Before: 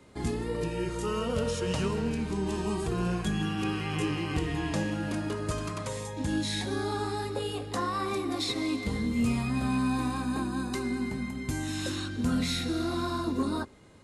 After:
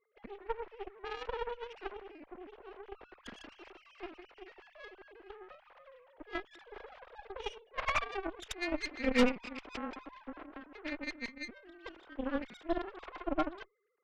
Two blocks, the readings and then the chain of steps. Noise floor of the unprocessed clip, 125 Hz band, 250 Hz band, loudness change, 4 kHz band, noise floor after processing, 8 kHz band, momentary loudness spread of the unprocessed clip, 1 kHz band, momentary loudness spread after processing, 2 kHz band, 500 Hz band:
-38 dBFS, -26.5 dB, -11.0 dB, -7.5 dB, -10.5 dB, -66 dBFS, -15.5 dB, 5 LU, -7.0 dB, 19 LU, -3.5 dB, -6.5 dB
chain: formants replaced by sine waves; Chebyshev shaper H 3 -10 dB, 4 -7 dB, 6 -13 dB, 8 -33 dB, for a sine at -12 dBFS; saturation -23.5 dBFS, distortion -6 dB; trim +4.5 dB

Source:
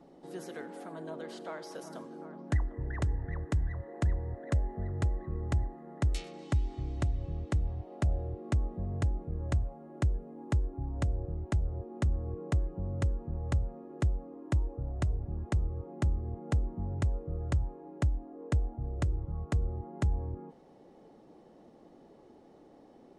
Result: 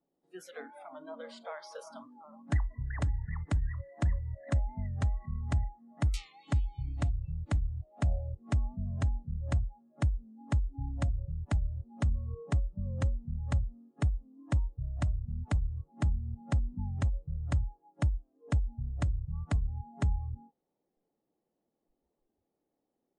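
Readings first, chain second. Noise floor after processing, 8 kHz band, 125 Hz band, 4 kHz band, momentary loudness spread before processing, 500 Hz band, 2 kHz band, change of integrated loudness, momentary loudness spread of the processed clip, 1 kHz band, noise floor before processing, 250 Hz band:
-84 dBFS, -1.0 dB, 0.0 dB, -0.5 dB, 9 LU, -5.0 dB, 0.0 dB, 0.0 dB, 11 LU, -1.0 dB, -57 dBFS, -1.5 dB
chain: spectral noise reduction 27 dB; warped record 45 rpm, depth 100 cents

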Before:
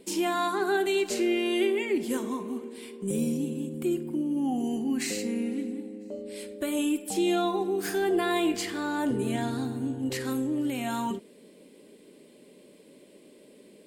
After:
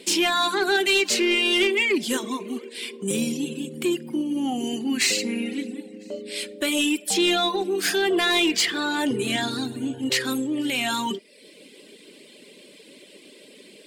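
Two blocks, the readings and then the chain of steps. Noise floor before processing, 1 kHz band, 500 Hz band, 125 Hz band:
-55 dBFS, +3.5 dB, +2.5 dB, -1.5 dB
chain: frequency weighting D; reverb removal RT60 0.72 s; saturation -19.5 dBFS, distortion -18 dB; trim +6 dB

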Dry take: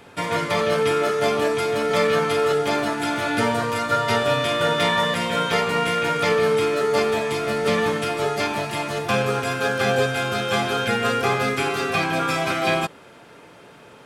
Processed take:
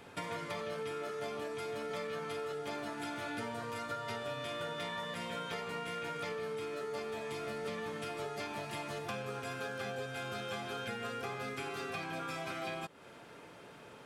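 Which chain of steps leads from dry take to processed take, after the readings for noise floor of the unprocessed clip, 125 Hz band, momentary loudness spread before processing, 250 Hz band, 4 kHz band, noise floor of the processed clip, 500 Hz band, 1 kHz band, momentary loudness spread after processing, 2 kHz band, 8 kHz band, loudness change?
-47 dBFS, -18.0 dB, 4 LU, -18.0 dB, -18.0 dB, -54 dBFS, -19.0 dB, -18.5 dB, 2 LU, -18.5 dB, -17.5 dB, -18.5 dB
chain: compression, threshold -31 dBFS, peak gain reduction 14.5 dB; trim -7 dB

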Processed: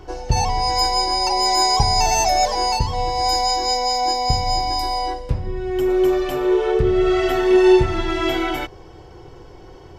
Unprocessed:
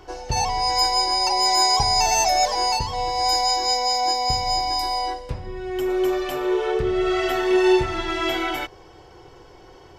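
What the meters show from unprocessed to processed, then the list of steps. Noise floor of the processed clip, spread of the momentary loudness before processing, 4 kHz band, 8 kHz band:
-42 dBFS, 10 LU, 0.0 dB, 0.0 dB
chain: bass shelf 400 Hz +9 dB

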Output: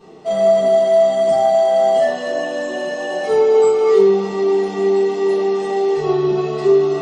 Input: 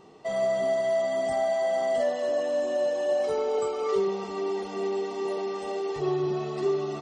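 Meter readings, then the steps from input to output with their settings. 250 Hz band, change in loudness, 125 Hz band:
+11.5 dB, +12.0 dB, no reading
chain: bass shelf 87 Hz -9 dB; simulated room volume 33 m³, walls mixed, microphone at 1.5 m

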